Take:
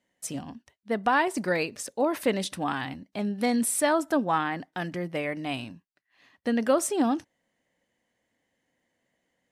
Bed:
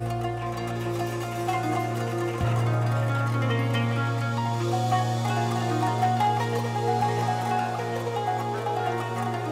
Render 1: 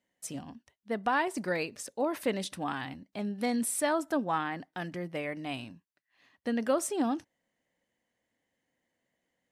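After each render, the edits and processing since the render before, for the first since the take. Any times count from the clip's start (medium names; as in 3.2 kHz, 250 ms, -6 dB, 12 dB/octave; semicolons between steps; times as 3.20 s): trim -5 dB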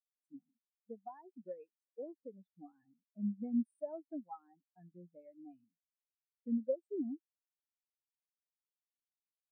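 compression 3:1, threshold -36 dBFS, peak gain reduction 10 dB; spectral contrast expander 4:1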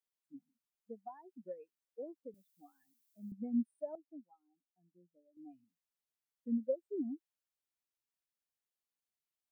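2.34–3.32 s: tilt EQ +5 dB/octave; 3.95–5.37 s: ladder band-pass 320 Hz, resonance 35%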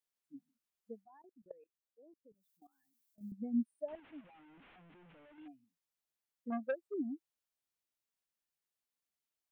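1.03–3.21 s: level held to a coarse grid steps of 20 dB; 3.88–5.48 s: one-bit delta coder 16 kbps, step -54.5 dBFS; 6.50–6.94 s: transformer saturation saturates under 810 Hz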